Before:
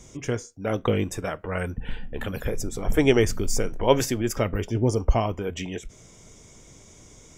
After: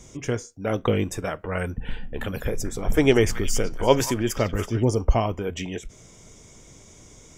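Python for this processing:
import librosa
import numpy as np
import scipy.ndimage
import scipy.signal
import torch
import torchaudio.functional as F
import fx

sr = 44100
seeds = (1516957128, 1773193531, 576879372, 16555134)

y = fx.echo_stepped(x, sr, ms=187, hz=1400.0, octaves=1.4, feedback_pct=70, wet_db=-6, at=(2.46, 4.85))
y = y * librosa.db_to_amplitude(1.0)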